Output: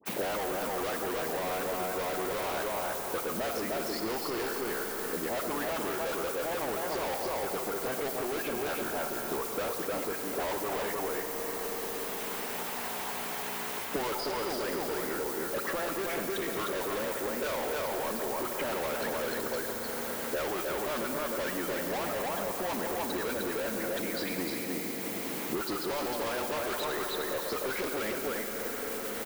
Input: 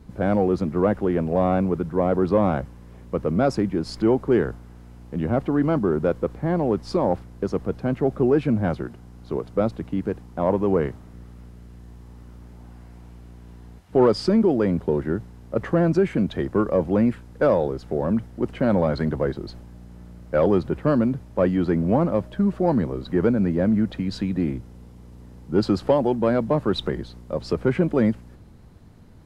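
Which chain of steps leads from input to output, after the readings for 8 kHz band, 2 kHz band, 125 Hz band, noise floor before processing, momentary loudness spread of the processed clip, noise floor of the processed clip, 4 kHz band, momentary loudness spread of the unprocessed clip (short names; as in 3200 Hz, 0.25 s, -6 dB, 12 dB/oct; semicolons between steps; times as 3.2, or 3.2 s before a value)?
n/a, +1.5 dB, -21.5 dB, -45 dBFS, 2 LU, -36 dBFS, +2.0 dB, 10 LU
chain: reverse delay 0.193 s, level -14 dB; added noise violet -34 dBFS; high shelf 5200 Hz -9 dB; harmonic-percussive split percussive +9 dB; in parallel at -2 dB: level quantiser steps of 12 dB; on the sum: HPF 590 Hz 12 dB/oct; dispersion highs, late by 56 ms, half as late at 1500 Hz; on a send: echo 0.305 s -5 dB; on the sum: expander -26 dBFS; hard clip -26 dBFS, distortion -2 dB; Schroeder reverb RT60 3.7 s, DRR 5.5 dB; three-band squash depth 100%; gain -6.5 dB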